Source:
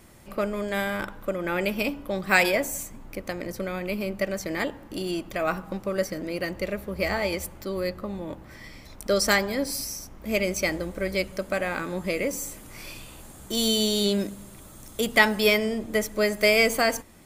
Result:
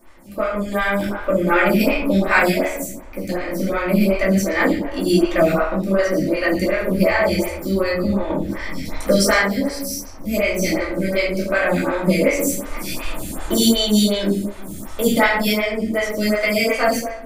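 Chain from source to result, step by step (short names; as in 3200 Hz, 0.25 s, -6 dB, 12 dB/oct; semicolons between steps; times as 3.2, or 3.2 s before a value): recorder AGC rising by 5.2 dB/s; 0.71–2.05 crackle 140/s -43 dBFS; reverb RT60 0.85 s, pre-delay 3 ms, DRR -7.5 dB; photocell phaser 2.7 Hz; gain -2 dB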